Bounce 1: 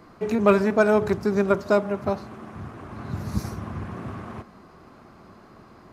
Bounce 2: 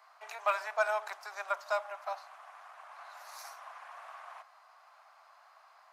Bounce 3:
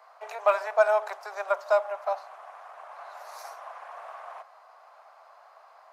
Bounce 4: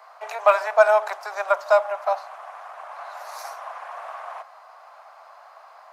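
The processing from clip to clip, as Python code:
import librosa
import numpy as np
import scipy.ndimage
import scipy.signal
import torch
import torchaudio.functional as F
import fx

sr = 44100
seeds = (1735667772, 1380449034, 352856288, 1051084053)

y1 = scipy.signal.sosfilt(scipy.signal.butter(8, 670.0, 'highpass', fs=sr, output='sos'), x)
y1 = y1 * 10.0 ** (-6.0 / 20.0)
y2 = fx.peak_eq(y1, sr, hz=470.0, db=14.5, octaves=1.8)
y3 = scipy.signal.sosfilt(scipy.signal.butter(2, 510.0, 'highpass', fs=sr, output='sos'), y2)
y3 = y3 * 10.0 ** (7.0 / 20.0)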